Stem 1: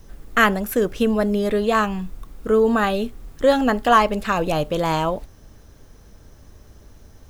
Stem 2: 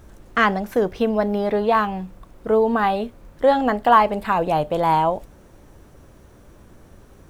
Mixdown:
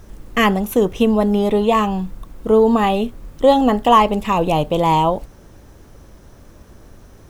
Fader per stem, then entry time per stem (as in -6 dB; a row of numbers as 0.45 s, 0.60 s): -0.5 dB, +1.5 dB; 0.00 s, 0.00 s